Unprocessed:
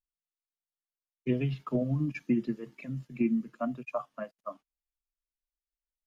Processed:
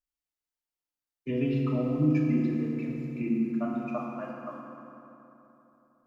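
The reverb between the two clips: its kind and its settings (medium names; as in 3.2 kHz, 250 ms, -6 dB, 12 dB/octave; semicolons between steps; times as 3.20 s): FDN reverb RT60 3.4 s, high-frequency decay 0.55×, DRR -3.5 dB; trim -3 dB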